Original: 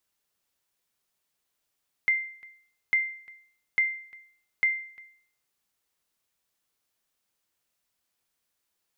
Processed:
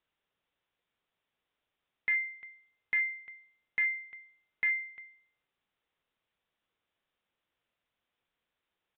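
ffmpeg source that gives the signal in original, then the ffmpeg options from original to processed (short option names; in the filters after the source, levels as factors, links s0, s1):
-f lavfi -i "aevalsrc='0.15*(sin(2*PI*2090*mod(t,0.85))*exp(-6.91*mod(t,0.85)/0.54)+0.0708*sin(2*PI*2090*max(mod(t,0.85)-0.35,0))*exp(-6.91*max(mod(t,0.85)-0.35,0)/0.54))':d=3.4:s=44100"
-af "equalizer=f=490:w=5:g=2.5,aresample=8000,volume=20,asoftclip=hard,volume=0.0501,aresample=44100"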